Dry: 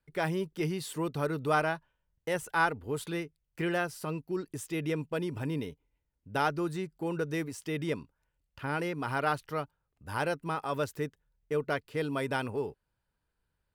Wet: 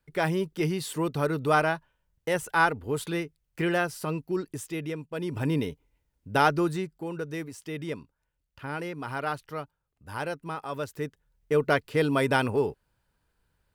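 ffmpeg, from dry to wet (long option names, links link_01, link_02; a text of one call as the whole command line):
ffmpeg -i in.wav -af "volume=26.5dB,afade=type=out:start_time=4.38:duration=0.7:silence=0.316228,afade=type=in:start_time=5.08:duration=0.4:silence=0.237137,afade=type=out:start_time=6.59:duration=0.47:silence=0.375837,afade=type=in:start_time=10.87:duration=0.82:silence=0.334965" out.wav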